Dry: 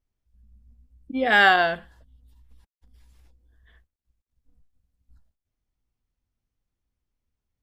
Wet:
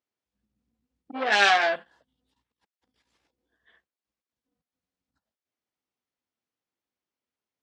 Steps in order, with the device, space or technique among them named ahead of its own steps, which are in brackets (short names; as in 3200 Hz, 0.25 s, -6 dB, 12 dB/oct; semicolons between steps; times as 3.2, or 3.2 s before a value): public-address speaker with an overloaded transformer (core saturation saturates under 3400 Hz; BPF 320–6000 Hz); 1.27–1.76 doubler 15 ms -3 dB